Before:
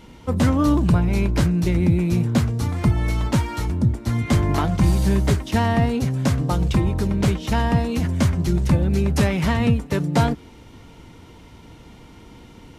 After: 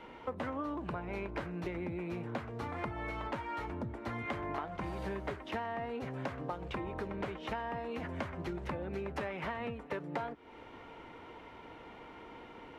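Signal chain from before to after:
three-way crossover with the lows and the highs turned down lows −18 dB, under 360 Hz, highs −23 dB, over 2,700 Hz
downward compressor 6 to 1, threshold −37 dBFS, peak gain reduction 17 dB
level +1 dB

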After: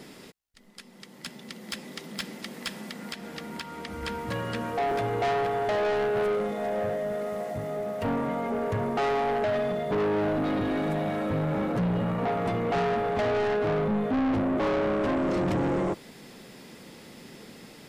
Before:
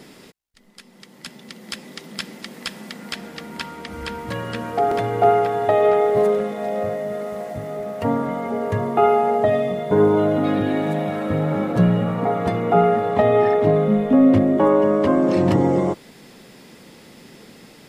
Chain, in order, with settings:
0:02.75–0:04.03: downward compressor, threshold −30 dBFS, peak gain reduction 7 dB
soft clipping −21.5 dBFS, distortion −7 dB
level −2 dB

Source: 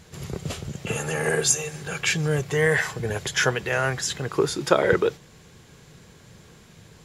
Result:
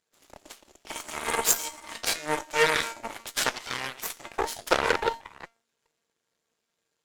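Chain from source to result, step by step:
delay that plays each chunk backwards 391 ms, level −13.5 dB
low-shelf EQ 130 Hz −10 dB
tuned comb filter 230 Hz, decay 0.5 s, harmonics all, mix 80%
harmonic generator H 5 −38 dB, 7 −16 dB, 8 −16 dB, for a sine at −15.5 dBFS
bass and treble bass −11 dB, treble +2 dB
level +9 dB

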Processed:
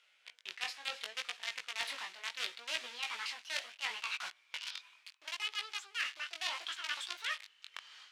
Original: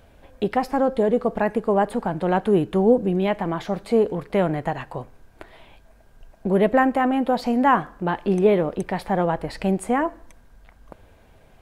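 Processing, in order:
gliding playback speed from 89% → 197%
in parallel at −3 dB: log-companded quantiser 2 bits
on the sum: automatic gain control gain up to 13 dB
four-pole ladder band-pass 3,500 Hz, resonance 25%
reversed playback
downward compressor 12 to 1, threshold −43 dBFS, peak gain reduction 22 dB
reversed playback
chorus effect 0.71 Hz, delay 16 ms, depth 6 ms
level +11.5 dB

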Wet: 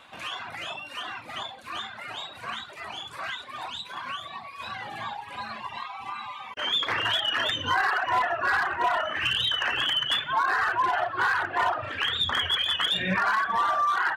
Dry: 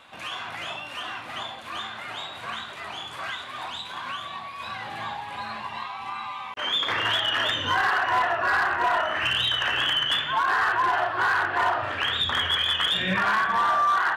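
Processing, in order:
reverb reduction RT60 1.2 s

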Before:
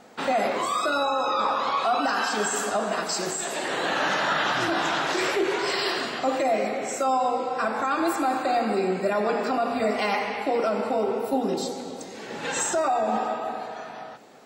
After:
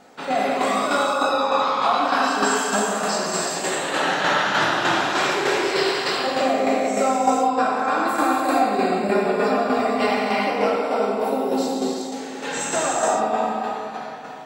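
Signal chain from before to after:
reverb whose tail is shaped and stops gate 490 ms flat, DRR −5 dB
shaped tremolo saw down 3.3 Hz, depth 45%
0:10.76–0:12.56: low-shelf EQ 170 Hz −11 dB
on a send: feedback echo with a low-pass in the loop 91 ms, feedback 82%, level −16 dB

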